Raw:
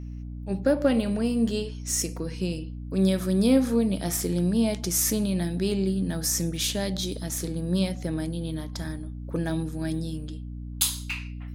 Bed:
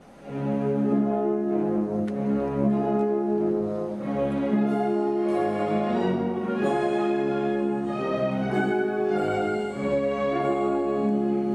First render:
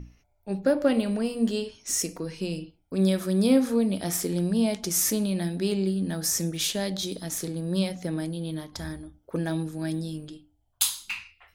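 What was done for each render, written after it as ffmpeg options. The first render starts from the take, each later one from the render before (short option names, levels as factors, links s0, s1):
-af "bandreject=f=60:t=h:w=6,bandreject=f=120:t=h:w=6,bandreject=f=180:t=h:w=6,bandreject=f=240:t=h:w=6,bandreject=f=300:t=h:w=6"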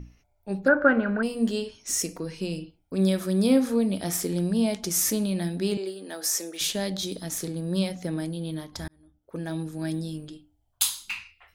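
-filter_complex "[0:a]asettb=1/sr,asplit=3[s0][s1][s2];[s0]atrim=end=0.684[s3];[s1]atrim=start=0.68:end=1.23,asetpts=PTS-STARTPTS,afade=t=in:d=0.004:c=qsin,afade=t=out:st=0.546:d=0.004:c=qsin,lowpass=f=1500:t=q:w=12[s4];[s2]atrim=start=1.226[s5];[s3][s4]acrossfade=d=0.004:c1=hsin:c2=qsin[s6];[s6][s5]acrossfade=d=0.004:c1=qsin:c2=hsin,asettb=1/sr,asplit=3[s7][s8][s9];[s7]atrim=end=5.774[s10];[s8]atrim=start=5.77:end=6.61,asetpts=PTS-STARTPTS,afade=t=in:d=0.004:c=qsin,afade=t=out:st=0.836:d=0.004:c=qsin,highpass=f=350:w=0.5412,highpass=f=350:w=1.3066[s11];[s9]atrim=start=6.606[s12];[s10][s11]acrossfade=d=0.004:c1=hsin:c2=qsin[s13];[s13][s12]acrossfade=d=0.004:c1=qsin:c2=hsin,asplit=2[s14][s15];[s14]atrim=end=8.88,asetpts=PTS-STARTPTS,afade=t=out:st=8.876:d=0.004:c=hsin[s16];[s15]atrim=start=8.88,asetpts=PTS-STARTPTS,afade=t=in:d=0.92[s17];[s16][s17]concat=n=2:v=0:a=1"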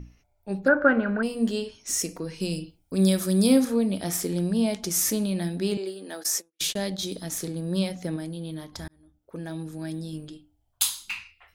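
-filter_complex "[0:a]asettb=1/sr,asplit=3[s0][s1][s2];[s0]atrim=end=2.404[s3];[s1]atrim=start=2.4:end=3.65,asetpts=PTS-STARTPTS,afade=t=in:d=0.004:c=qsin,afade=t=out:st=1.246:d=0.004:c=qsin,bass=f=250:g=3,treble=f=4000:g=9[s4];[s2]atrim=start=3.646[s5];[s3][s4]acrossfade=d=0.004:c1=hsin:c2=qsin[s6];[s6][s5]acrossfade=d=0.004:c1=qsin:c2=hsin,asplit=3[s7][s8][s9];[s7]afade=t=out:st=6.22:d=0.02[s10];[s8]agate=range=0.00316:threshold=0.0251:ratio=16:release=100:detection=peak,afade=t=in:st=6.22:d=0.02,afade=t=out:st=6.97:d=0.02[s11];[s9]afade=t=in:st=6.97:d=0.02[s12];[s10][s11][s12]amix=inputs=3:normalize=0,asettb=1/sr,asplit=3[s13][s14][s15];[s13]atrim=end=8.164[s16];[s14]atrim=start=8.16:end=10.13,asetpts=PTS-STARTPTS,afade=t=in:d=0.004:c=qsin,afade=t=out:st=1.966:d=0.004:c=qsin,acompressor=threshold=0.0178:ratio=1.5:attack=3.2:release=140:knee=1:detection=peak[s17];[s15]atrim=start=10.126[s18];[s16][s17]acrossfade=d=0.004:c1=hsin:c2=qsin[s19];[s19][s18]acrossfade=d=0.004:c1=qsin:c2=hsin"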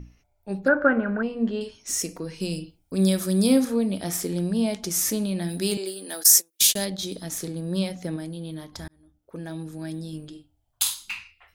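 -filter_complex "[0:a]asettb=1/sr,asplit=3[s0][s1][s2];[s0]atrim=end=0.874[s3];[s1]atrim=start=0.87:end=1.61,asetpts=PTS-STARTPTS,afade=t=in:d=0.004:c=qsin,afade=t=out:st=0.736:d=0.004:c=qsin,lowpass=2400[s4];[s2]atrim=start=1.606[s5];[s3][s4]acrossfade=d=0.004:c1=hsin:c2=qsin[s6];[s6][s5]acrossfade=d=0.004:c1=qsin:c2=hsin,asplit=3[s7][s8][s9];[s7]afade=t=out:st=5.48:d=0.02[s10];[s8]aemphasis=mode=production:type=75kf,afade=t=in:st=5.48:d=0.02,afade=t=out:st=6.84:d=0.02[s11];[s9]afade=t=in:st=6.84:d=0.02[s12];[s10][s11][s12]amix=inputs=3:normalize=0,asettb=1/sr,asplit=3[s13][s14][s15];[s13]atrim=end=10.304[s16];[s14]atrim=start=10.3:end=10.94,asetpts=PTS-STARTPTS,afade=t=in:d=0.004:c=qsin,afade=t=out:st=0.636:d=0.004:c=qsin,asplit=2[s17][s18];[s18]adelay=48,volume=0.376[s19];[s17][s19]amix=inputs=2:normalize=0,atrim=end_sample=28224[s20];[s15]atrim=start=10.936[s21];[s16][s20]acrossfade=d=0.004:c1=hsin:c2=qsin[s22];[s22][s21]acrossfade=d=0.004:c1=qsin:c2=hsin"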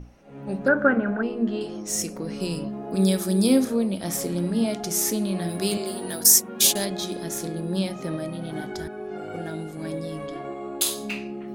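-filter_complex "[1:a]volume=0.316[s0];[0:a][s0]amix=inputs=2:normalize=0"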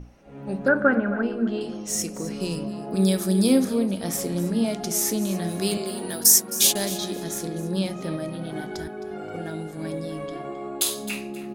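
-af "aecho=1:1:264|528:0.178|0.0409"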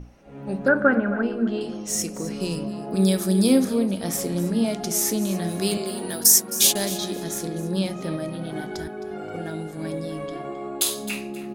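-af "volume=1.12,alimiter=limit=0.708:level=0:latency=1"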